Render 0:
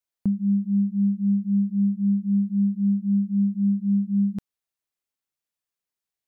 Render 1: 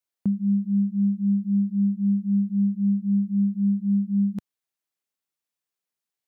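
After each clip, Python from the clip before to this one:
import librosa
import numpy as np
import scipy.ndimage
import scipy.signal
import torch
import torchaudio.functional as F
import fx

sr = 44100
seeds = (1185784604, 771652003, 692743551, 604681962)

y = scipy.signal.sosfilt(scipy.signal.butter(2, 110.0, 'highpass', fs=sr, output='sos'), x)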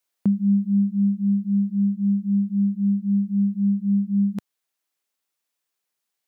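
y = fx.rider(x, sr, range_db=10, speed_s=2.0)
y = fx.low_shelf(y, sr, hz=200.0, db=-9.5)
y = y * librosa.db_to_amplitude(6.0)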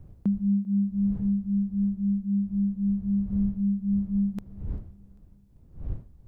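y = fx.dmg_wind(x, sr, seeds[0], corner_hz=86.0, level_db=-35.0)
y = fx.echo_feedback(y, sr, ms=394, feedback_pct=47, wet_db=-24.0)
y = y * librosa.db_to_amplitude(-5.0)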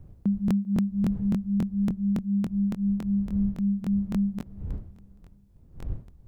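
y = fx.buffer_crackle(x, sr, first_s=0.46, period_s=0.28, block=1024, kind='repeat')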